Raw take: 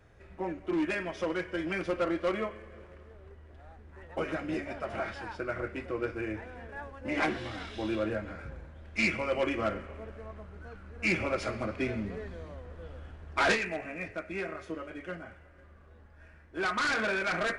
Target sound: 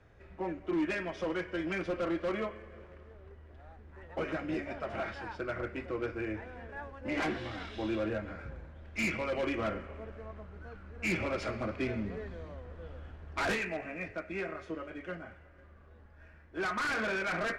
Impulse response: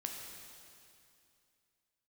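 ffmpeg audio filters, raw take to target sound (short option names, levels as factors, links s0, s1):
-filter_complex "[0:a]acrossover=split=260[s0][s1];[s1]volume=26.6,asoftclip=hard,volume=0.0376[s2];[s0][s2]amix=inputs=2:normalize=0,adynamicsmooth=sensitivity=3:basefreq=7300,volume=0.891"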